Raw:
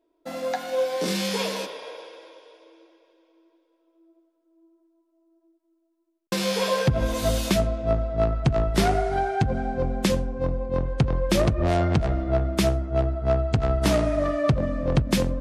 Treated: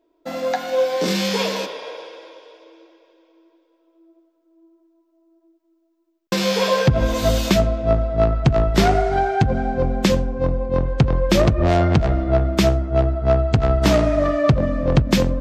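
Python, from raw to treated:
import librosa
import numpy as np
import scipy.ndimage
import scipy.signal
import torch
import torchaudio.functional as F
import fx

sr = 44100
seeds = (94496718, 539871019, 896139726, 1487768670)

y = fx.peak_eq(x, sr, hz=10000.0, db=-13.5, octaves=0.39)
y = y * librosa.db_to_amplitude(5.5)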